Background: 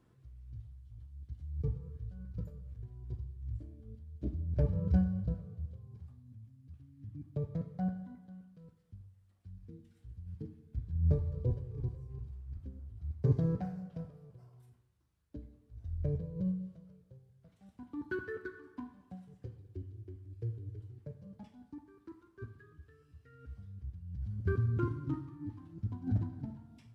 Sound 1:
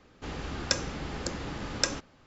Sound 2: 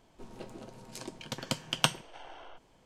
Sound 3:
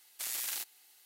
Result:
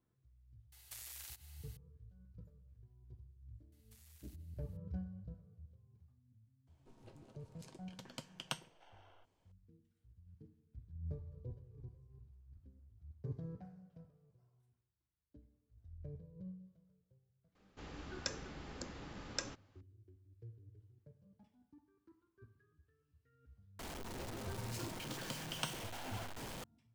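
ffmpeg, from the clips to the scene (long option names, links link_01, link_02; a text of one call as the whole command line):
ffmpeg -i bed.wav -i cue0.wav -i cue1.wav -i cue2.wav -filter_complex "[3:a]asplit=2[link_01][link_02];[2:a]asplit=2[link_03][link_04];[0:a]volume=-15dB[link_05];[link_01]acompressor=threshold=-45dB:ratio=16:attack=5.4:release=114:knee=1:detection=rms[link_06];[link_02]acompressor=threshold=-46dB:ratio=6:attack=3.2:release=140:knee=1:detection=peak[link_07];[link_04]aeval=exprs='val(0)+0.5*0.0562*sgn(val(0))':channel_layout=same[link_08];[link_06]atrim=end=1.05,asetpts=PTS-STARTPTS,volume=-1dB,afade=type=in:duration=0.004:curve=hsin,afade=type=out:start_time=1.046:duration=0.004:curve=hsin,adelay=720[link_09];[link_07]atrim=end=1.05,asetpts=PTS-STARTPTS,volume=-17dB,afade=type=in:duration=0.004:curve=hsin,afade=type=out:start_time=1.046:duration=0.004:curve=hsin,adelay=3720[link_10];[link_03]atrim=end=2.85,asetpts=PTS-STARTPTS,volume=-15.5dB,afade=type=in:duration=0.004:curve=hsin,afade=type=out:start_time=2.846:duration=0.004:curve=hsin,adelay=6670[link_11];[1:a]atrim=end=2.26,asetpts=PTS-STARTPTS,volume=-13dB,afade=type=in:duration=0.004:curve=hsin,afade=type=out:start_time=2.256:duration=0.004:curve=hsin,adelay=17550[link_12];[link_08]atrim=end=2.85,asetpts=PTS-STARTPTS,volume=-16dB,afade=type=in:duration=0.004:curve=hsin,afade=type=out:start_time=2.846:duration=0.004:curve=hsin,adelay=23790[link_13];[link_05][link_09][link_10][link_11][link_12][link_13]amix=inputs=6:normalize=0" out.wav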